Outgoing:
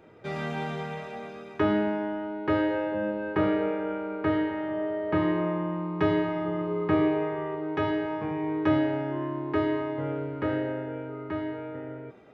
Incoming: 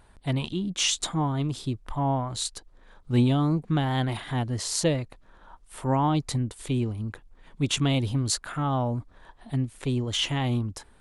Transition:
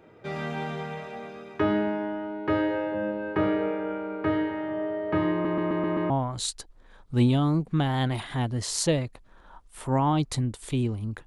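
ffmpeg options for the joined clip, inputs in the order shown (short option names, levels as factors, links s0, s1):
-filter_complex "[0:a]apad=whole_dur=11.26,atrim=end=11.26,asplit=6[s0][s1][s2][s3][s4][s5];[s0]atrim=end=5.452[s6];[s1]atrim=start=5.318:end=5.452[s7];[s2]atrim=start=5.318:end=5.452[s8];[s3]atrim=start=5.318:end=5.452[s9];[s4]atrim=start=5.318:end=5.452[s10];[s5]atrim=start=5.318:end=5.452[s11];[1:a]atrim=start=2.068:end=7.23[s12];[s6][s7]acrossfade=d=0.004:c1=hsin:c2=hsin[s13];[s13][s8]acrossfade=d=0.004:c1=hsin:c2=hsin[s14];[s14][s9]acrossfade=d=0.004:c1=hsin:c2=hsin[s15];[s15][s10]acrossfade=d=0.004:c1=hsin:c2=hsin[s16];[s16][s11]acrossfade=d=0.004:c1=hsin:c2=hsin[s17];[s17][s12]acrossfade=d=0.004:c1=hsin:c2=hsin"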